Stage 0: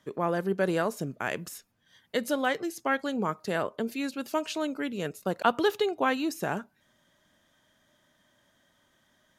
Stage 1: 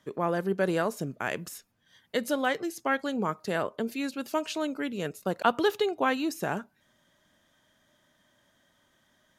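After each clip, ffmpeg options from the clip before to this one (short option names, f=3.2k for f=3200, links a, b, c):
-af anull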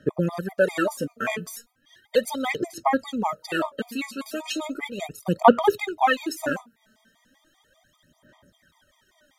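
-af "aphaser=in_gain=1:out_gain=1:delay=4.6:decay=0.75:speed=0.36:type=sinusoidal,afftfilt=real='re*gt(sin(2*PI*5.1*pts/sr)*(1-2*mod(floor(b*sr/1024/630),2)),0)':imag='im*gt(sin(2*PI*5.1*pts/sr)*(1-2*mod(floor(b*sr/1024/630),2)),0)':win_size=1024:overlap=0.75,volume=4.5dB"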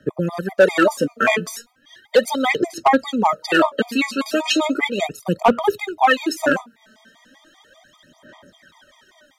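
-filter_complex "[0:a]acrossover=split=200|6900[a][b][c];[b]dynaudnorm=f=170:g=5:m=11dB[d];[a][d][c]amix=inputs=3:normalize=0,volume=7.5dB,asoftclip=hard,volume=-7.5dB,volume=1dB"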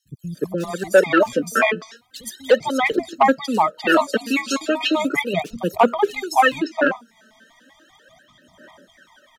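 -filter_complex "[0:a]acrossover=split=170|4400[a][b][c];[a]adelay=50[d];[b]adelay=350[e];[d][e][c]amix=inputs=3:normalize=0"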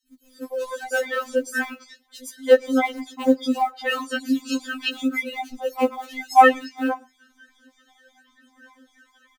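-filter_complex "[0:a]acrusher=bits=8:mode=log:mix=0:aa=0.000001,asplit=2[a][b];[b]adelay=116.6,volume=-28dB,highshelf=f=4k:g=-2.62[c];[a][c]amix=inputs=2:normalize=0,afftfilt=real='re*3.46*eq(mod(b,12),0)':imag='im*3.46*eq(mod(b,12),0)':win_size=2048:overlap=0.75,volume=-2.5dB"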